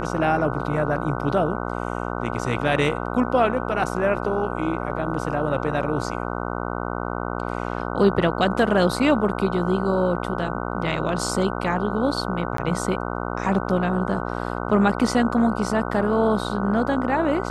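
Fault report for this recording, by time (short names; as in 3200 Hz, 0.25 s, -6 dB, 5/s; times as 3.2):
buzz 60 Hz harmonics 25 -28 dBFS
12.57–12.58 gap 13 ms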